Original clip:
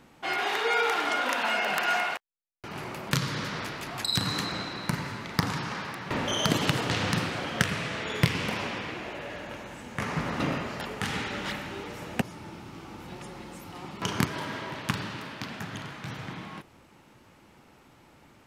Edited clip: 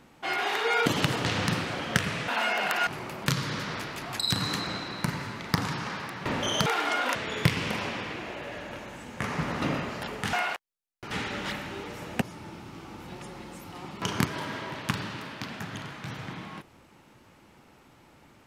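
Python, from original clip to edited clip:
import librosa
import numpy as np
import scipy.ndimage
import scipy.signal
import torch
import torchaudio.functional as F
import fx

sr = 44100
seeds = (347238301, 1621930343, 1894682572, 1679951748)

y = fx.edit(x, sr, fx.swap(start_s=0.86, length_s=0.49, other_s=6.51, other_length_s=1.42),
    fx.move(start_s=1.94, length_s=0.78, to_s=11.11), tone=tone)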